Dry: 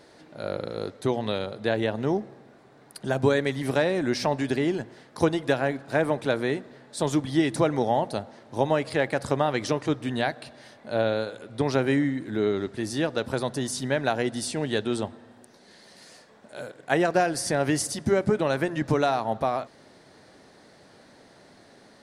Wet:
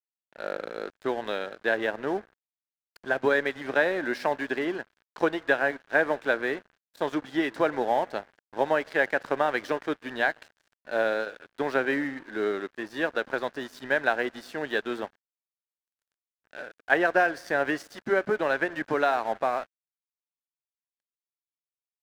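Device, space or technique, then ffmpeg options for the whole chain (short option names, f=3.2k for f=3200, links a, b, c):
pocket radio on a weak battery: -af "highpass=350,lowpass=3.2k,aeval=exprs='sgn(val(0))*max(abs(val(0))-0.00631,0)':c=same,equalizer=f=1.6k:t=o:w=0.38:g=8.5"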